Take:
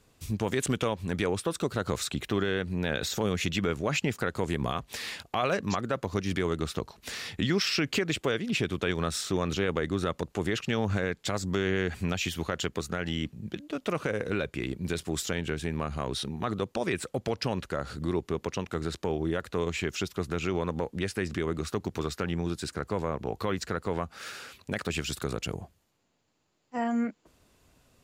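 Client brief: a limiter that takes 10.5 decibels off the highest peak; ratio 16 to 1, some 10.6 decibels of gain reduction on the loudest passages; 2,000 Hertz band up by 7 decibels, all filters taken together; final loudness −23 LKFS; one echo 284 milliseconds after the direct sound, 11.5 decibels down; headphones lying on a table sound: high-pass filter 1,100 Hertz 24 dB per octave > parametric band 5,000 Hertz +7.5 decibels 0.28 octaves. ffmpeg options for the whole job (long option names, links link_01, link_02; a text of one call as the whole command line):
ffmpeg -i in.wav -af "equalizer=frequency=2000:width_type=o:gain=9,acompressor=threshold=-31dB:ratio=16,alimiter=level_in=3dB:limit=-24dB:level=0:latency=1,volume=-3dB,highpass=frequency=1100:width=0.5412,highpass=frequency=1100:width=1.3066,equalizer=frequency=5000:width_type=o:width=0.28:gain=7.5,aecho=1:1:284:0.266,volume=17.5dB" out.wav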